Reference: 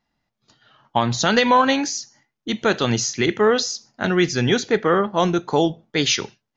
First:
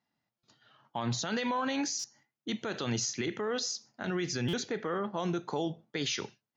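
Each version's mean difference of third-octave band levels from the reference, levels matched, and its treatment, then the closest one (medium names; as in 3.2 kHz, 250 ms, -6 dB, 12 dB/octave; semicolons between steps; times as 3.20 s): 3.0 dB: high-pass 94 Hz 24 dB/octave; peak limiter -15.5 dBFS, peak gain reduction 11 dB; buffer glitch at 0.38/1.99/4.48 s, samples 256, times 8; trim -8 dB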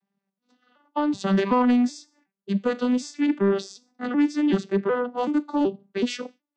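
8.5 dB: vocoder on a broken chord major triad, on G3, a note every 376 ms; saturation -11 dBFS, distortion -20 dB; vibrato 2.1 Hz 18 cents; trim -1.5 dB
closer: first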